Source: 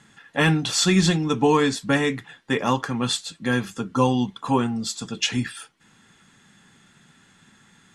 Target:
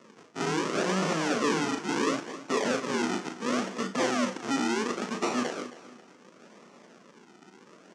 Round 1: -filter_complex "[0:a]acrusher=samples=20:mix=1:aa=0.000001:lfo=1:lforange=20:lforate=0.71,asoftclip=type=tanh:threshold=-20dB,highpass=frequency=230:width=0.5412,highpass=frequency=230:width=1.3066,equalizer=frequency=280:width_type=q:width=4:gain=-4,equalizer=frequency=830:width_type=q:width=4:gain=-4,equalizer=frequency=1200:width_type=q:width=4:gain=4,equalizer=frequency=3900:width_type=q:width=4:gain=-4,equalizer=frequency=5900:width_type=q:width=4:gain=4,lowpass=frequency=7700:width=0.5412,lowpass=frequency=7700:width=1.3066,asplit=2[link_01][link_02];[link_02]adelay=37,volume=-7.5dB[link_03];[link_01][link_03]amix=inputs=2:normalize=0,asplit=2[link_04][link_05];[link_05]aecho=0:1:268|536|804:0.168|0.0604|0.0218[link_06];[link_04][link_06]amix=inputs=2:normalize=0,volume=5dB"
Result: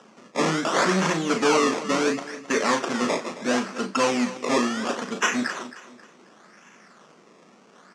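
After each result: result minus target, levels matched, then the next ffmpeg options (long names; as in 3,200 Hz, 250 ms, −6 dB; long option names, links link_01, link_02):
sample-and-hold swept by an LFO: distortion −9 dB; soft clipping: distortion −5 dB
-filter_complex "[0:a]acrusher=samples=54:mix=1:aa=0.000001:lfo=1:lforange=54:lforate=0.71,asoftclip=type=tanh:threshold=-20dB,highpass=frequency=230:width=0.5412,highpass=frequency=230:width=1.3066,equalizer=frequency=280:width_type=q:width=4:gain=-4,equalizer=frequency=830:width_type=q:width=4:gain=-4,equalizer=frequency=1200:width_type=q:width=4:gain=4,equalizer=frequency=3900:width_type=q:width=4:gain=-4,equalizer=frequency=5900:width_type=q:width=4:gain=4,lowpass=frequency=7700:width=0.5412,lowpass=frequency=7700:width=1.3066,asplit=2[link_01][link_02];[link_02]adelay=37,volume=-7.5dB[link_03];[link_01][link_03]amix=inputs=2:normalize=0,asplit=2[link_04][link_05];[link_05]aecho=0:1:268|536|804:0.168|0.0604|0.0218[link_06];[link_04][link_06]amix=inputs=2:normalize=0,volume=5dB"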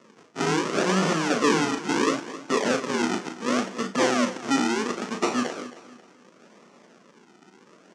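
soft clipping: distortion −5 dB
-filter_complex "[0:a]acrusher=samples=54:mix=1:aa=0.000001:lfo=1:lforange=54:lforate=0.71,asoftclip=type=tanh:threshold=-27dB,highpass=frequency=230:width=0.5412,highpass=frequency=230:width=1.3066,equalizer=frequency=280:width_type=q:width=4:gain=-4,equalizer=frequency=830:width_type=q:width=4:gain=-4,equalizer=frequency=1200:width_type=q:width=4:gain=4,equalizer=frequency=3900:width_type=q:width=4:gain=-4,equalizer=frequency=5900:width_type=q:width=4:gain=4,lowpass=frequency=7700:width=0.5412,lowpass=frequency=7700:width=1.3066,asplit=2[link_01][link_02];[link_02]adelay=37,volume=-7.5dB[link_03];[link_01][link_03]amix=inputs=2:normalize=0,asplit=2[link_04][link_05];[link_05]aecho=0:1:268|536|804:0.168|0.0604|0.0218[link_06];[link_04][link_06]amix=inputs=2:normalize=0,volume=5dB"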